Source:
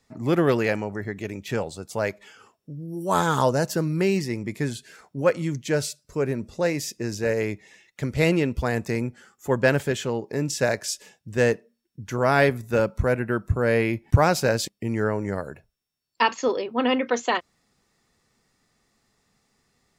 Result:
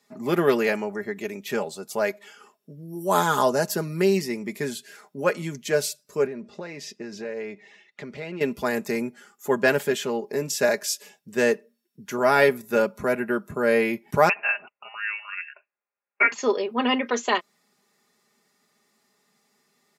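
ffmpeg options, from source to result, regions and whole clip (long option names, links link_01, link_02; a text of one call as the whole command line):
ffmpeg -i in.wav -filter_complex "[0:a]asettb=1/sr,asplit=3[link_01][link_02][link_03];[link_01]atrim=end=6.264[link_04];[link_02]atrim=start=6.26:end=8.41,asetpts=PTS-STARTPTS,afade=type=in:duration=0.004:curve=qsin,afade=type=out:start_time=2.146:duration=0.004:curve=qsin,lowpass=3900,acompressor=threshold=-30dB:ratio=5:attack=3.2:release=140:knee=1:detection=peak[link_05];[link_03]atrim=start=8.406[link_06];[link_04][link_05]acrossfade=duration=0.004:curve1=hsin:curve2=qsin[link_07];[link_07][link_06]acrossfade=duration=0.004:curve1=qsin:curve2=hsin,asettb=1/sr,asplit=3[link_08][link_09][link_10];[link_08]atrim=end=14.294[link_11];[link_09]atrim=start=14.29:end=16.32,asetpts=PTS-STARTPTS,afade=type=in:duration=0.004:curve=qsin,afade=type=out:start_time=2.026:duration=0.004:curve=qsin,highpass=frequency=540:width=0.5412,highpass=frequency=540:width=1.3066,tiltshelf=frequency=1400:gain=-4,lowpass=frequency=2700:width_type=q:width=0.5098,lowpass=frequency=2700:width_type=q:width=0.6013,lowpass=frequency=2700:width_type=q:width=0.9,lowpass=frequency=2700:width_type=q:width=2.563,afreqshift=-3200[link_12];[link_10]atrim=start=16.316[link_13];[link_11][link_12]acrossfade=duration=0.004:curve1=hsin:curve2=qsin[link_14];[link_14][link_13]acrossfade=duration=0.004:curve1=qsin:curve2=hsin,highpass=230,equalizer=frequency=12000:width_type=o:width=0.23:gain=9.5,aecho=1:1:4.9:0.61" out.wav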